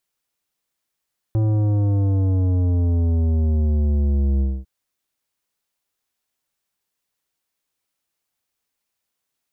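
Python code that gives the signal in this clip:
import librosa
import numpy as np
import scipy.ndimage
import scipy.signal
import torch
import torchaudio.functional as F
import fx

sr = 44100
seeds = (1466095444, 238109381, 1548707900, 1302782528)

y = fx.sub_drop(sr, level_db=-17, start_hz=110.0, length_s=3.3, drive_db=11.5, fade_s=0.24, end_hz=65.0)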